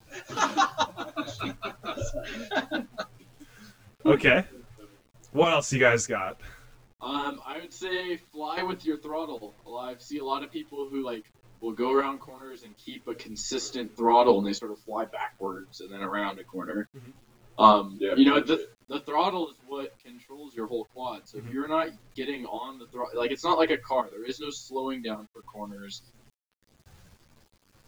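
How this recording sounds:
sample-and-hold tremolo, depth 85%
a quantiser's noise floor 10 bits, dither none
a shimmering, thickened sound

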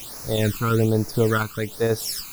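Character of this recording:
a quantiser's noise floor 6 bits, dither triangular
phaser sweep stages 12, 1.2 Hz, lowest notch 570–3,200 Hz
sample-and-hold tremolo

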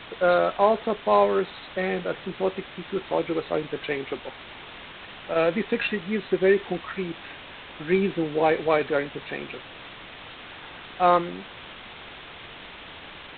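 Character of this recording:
a quantiser's noise floor 6 bits, dither triangular
IMA ADPCM

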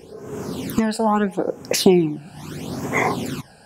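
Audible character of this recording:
phaser sweep stages 12, 0.77 Hz, lowest notch 350–4,200 Hz

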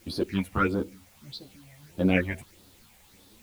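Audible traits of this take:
phaser sweep stages 6, 1.6 Hz, lowest notch 320–2,200 Hz
a quantiser's noise floor 10 bits, dither triangular
a shimmering, thickened sound

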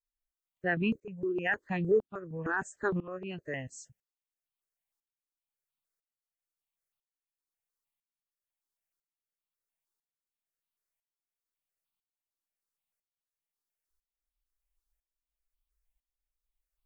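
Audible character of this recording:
tremolo saw up 1 Hz, depth 90%
notches that jump at a steady rate 6.5 Hz 600–1,800 Hz

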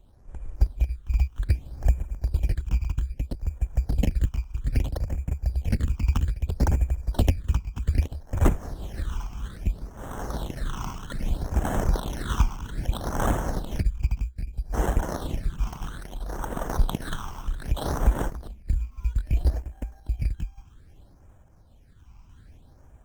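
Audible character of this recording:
aliases and images of a low sample rate 2,400 Hz, jitter 0%
sample-and-hold tremolo
phaser sweep stages 8, 0.62 Hz, lowest notch 510–4,400 Hz
Opus

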